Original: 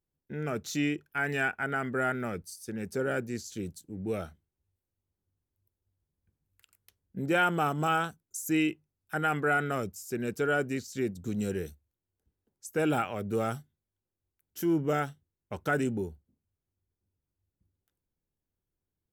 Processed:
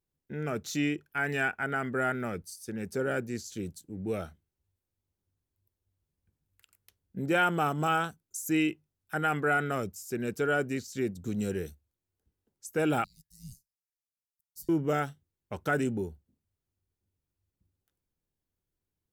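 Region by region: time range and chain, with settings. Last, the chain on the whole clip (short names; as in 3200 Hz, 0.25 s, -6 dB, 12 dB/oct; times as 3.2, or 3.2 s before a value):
13.04–14.69 ring modulator 1500 Hz + Chebyshev band-stop 180–5100 Hz, order 4
whole clip: dry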